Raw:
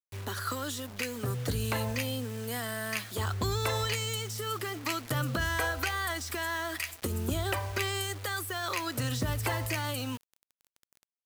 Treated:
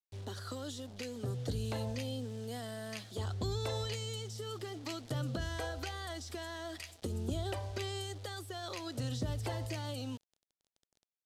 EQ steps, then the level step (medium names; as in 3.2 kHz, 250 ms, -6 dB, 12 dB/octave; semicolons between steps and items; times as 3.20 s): distance through air 61 m; high-order bell 1.6 kHz -9 dB; -4.5 dB